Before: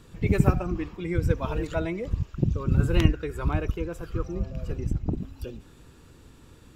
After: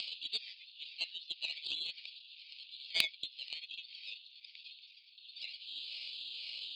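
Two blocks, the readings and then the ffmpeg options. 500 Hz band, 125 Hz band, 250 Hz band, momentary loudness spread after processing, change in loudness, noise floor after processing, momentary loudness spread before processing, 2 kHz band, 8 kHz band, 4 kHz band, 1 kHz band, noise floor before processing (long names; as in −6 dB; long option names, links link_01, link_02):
−33.5 dB, below −40 dB, below −40 dB, 17 LU, −12.5 dB, −60 dBFS, 11 LU, −5.0 dB, −5.5 dB, +9.0 dB, −28.5 dB, −52 dBFS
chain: -af "aemphasis=mode=production:type=75kf,acompressor=mode=upward:threshold=-26dB:ratio=2.5,asuperpass=centerf=3600:order=12:qfactor=2.6,aeval=exprs='0.0841*(cos(1*acos(clip(val(0)/0.0841,-1,1)))-cos(1*PI/2))+0.00668*(cos(2*acos(clip(val(0)/0.0841,-1,1)))-cos(2*PI/2))+0.00841*(cos(4*acos(clip(val(0)/0.0841,-1,1)))-cos(4*PI/2))':channel_layout=same,aeval=exprs='val(0)*sin(2*PI*480*n/s+480*0.4/2*sin(2*PI*2*n/s))':channel_layout=same,volume=11dB"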